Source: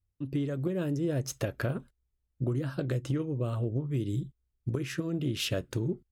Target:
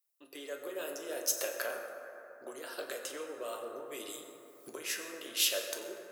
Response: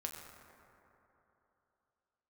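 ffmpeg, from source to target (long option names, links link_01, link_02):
-filter_complex "[0:a]highpass=frequency=490:width=0.5412,highpass=frequency=490:width=1.3066,aemphasis=mode=production:type=75kf,asplit=3[link_01][link_02][link_03];[link_01]afade=type=out:start_time=2.71:duration=0.02[link_04];[link_02]acompressor=mode=upward:threshold=-35dB:ratio=2.5,afade=type=in:start_time=2.71:duration=0.02,afade=type=out:start_time=4.71:duration=0.02[link_05];[link_03]afade=type=in:start_time=4.71:duration=0.02[link_06];[link_04][link_05][link_06]amix=inputs=3:normalize=0[link_07];[1:a]atrim=start_sample=2205[link_08];[link_07][link_08]afir=irnorm=-1:irlink=0"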